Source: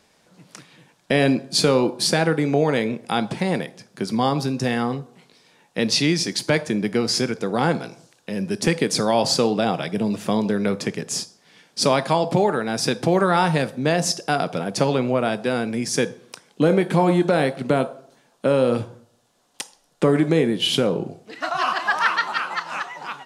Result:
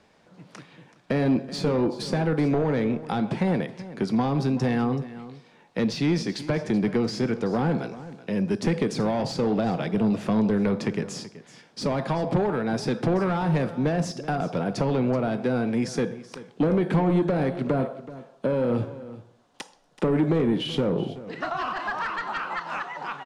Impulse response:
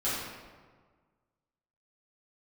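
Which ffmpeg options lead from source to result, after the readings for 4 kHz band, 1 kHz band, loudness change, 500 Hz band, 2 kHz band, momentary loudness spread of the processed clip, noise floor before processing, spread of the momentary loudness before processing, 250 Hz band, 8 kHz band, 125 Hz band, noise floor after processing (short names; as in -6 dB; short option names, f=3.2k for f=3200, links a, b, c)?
-12.0 dB, -6.5 dB, -4.5 dB, -5.0 dB, -8.0 dB, 11 LU, -61 dBFS, 10 LU, -1.5 dB, -14.5 dB, -1.0 dB, -58 dBFS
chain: -filter_complex "[0:a]asoftclip=type=tanh:threshold=-16.5dB,acrossover=split=340[a][b];[b]acompressor=threshold=-27dB:ratio=6[c];[a][c]amix=inputs=2:normalize=0,aemphasis=mode=reproduction:type=75fm,aecho=1:1:379:0.158,volume=1dB"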